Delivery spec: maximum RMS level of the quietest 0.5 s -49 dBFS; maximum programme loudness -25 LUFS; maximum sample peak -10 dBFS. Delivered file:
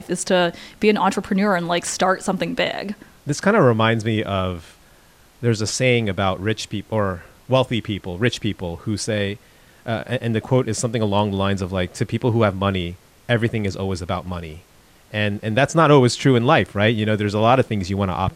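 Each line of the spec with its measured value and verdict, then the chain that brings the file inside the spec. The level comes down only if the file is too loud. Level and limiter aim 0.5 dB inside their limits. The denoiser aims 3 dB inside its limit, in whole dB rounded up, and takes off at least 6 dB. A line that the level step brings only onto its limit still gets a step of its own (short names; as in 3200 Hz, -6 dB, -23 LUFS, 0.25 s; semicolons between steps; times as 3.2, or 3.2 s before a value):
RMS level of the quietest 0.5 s -51 dBFS: OK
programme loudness -20.5 LUFS: fail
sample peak -4.0 dBFS: fail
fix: gain -5 dB; limiter -10.5 dBFS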